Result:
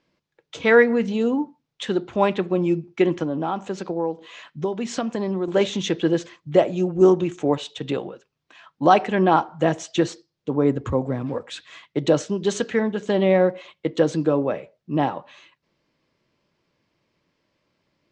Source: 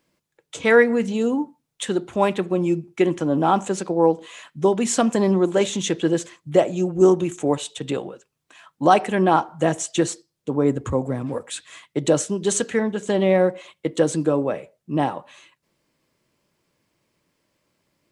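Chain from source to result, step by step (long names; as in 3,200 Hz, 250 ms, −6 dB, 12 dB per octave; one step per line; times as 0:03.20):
low-pass filter 5,500 Hz 24 dB per octave
0:03.23–0:05.48: downward compressor 2.5 to 1, threshold −25 dBFS, peak gain reduction 9.5 dB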